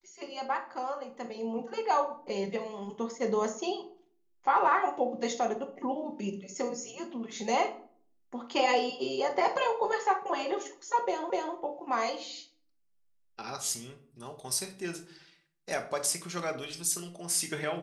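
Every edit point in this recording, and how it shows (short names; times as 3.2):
11.3 repeat of the last 0.25 s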